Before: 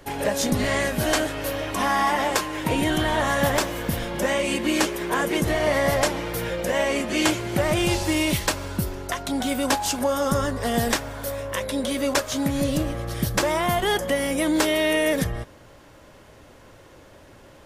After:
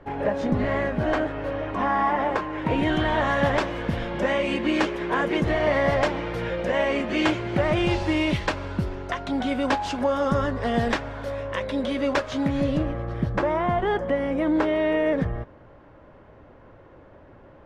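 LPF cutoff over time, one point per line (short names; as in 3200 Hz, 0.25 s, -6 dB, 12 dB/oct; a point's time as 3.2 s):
2.47 s 1600 Hz
2.9 s 2900 Hz
12.56 s 2900 Hz
13.14 s 1500 Hz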